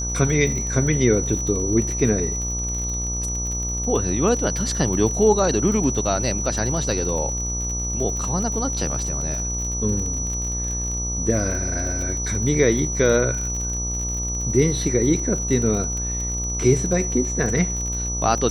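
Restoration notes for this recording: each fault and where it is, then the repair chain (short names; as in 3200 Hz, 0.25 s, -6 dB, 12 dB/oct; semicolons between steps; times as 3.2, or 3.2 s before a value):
buzz 60 Hz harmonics 21 -28 dBFS
crackle 40/s -27 dBFS
tone 5900 Hz -26 dBFS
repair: de-click; de-hum 60 Hz, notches 21; notch 5900 Hz, Q 30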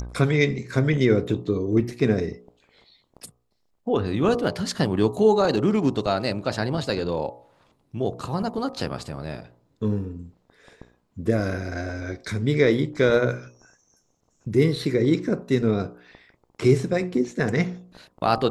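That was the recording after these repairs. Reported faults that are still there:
none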